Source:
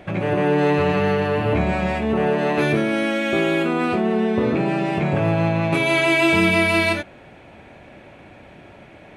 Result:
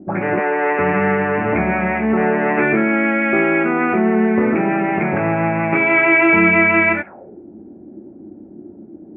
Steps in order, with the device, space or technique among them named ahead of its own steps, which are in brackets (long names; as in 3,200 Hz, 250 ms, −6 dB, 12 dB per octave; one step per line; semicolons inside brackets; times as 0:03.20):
0:00.39–0:00.79: Chebyshev high-pass filter 510 Hz, order 2
envelope filter bass rig (envelope-controlled low-pass 250–2,200 Hz up, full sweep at −20.5 dBFS; loudspeaker in its box 85–2,200 Hz, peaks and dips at 130 Hz −9 dB, 210 Hz +8 dB, 360 Hz +6 dB, 810 Hz +6 dB, 1,400 Hz +5 dB)
level −1 dB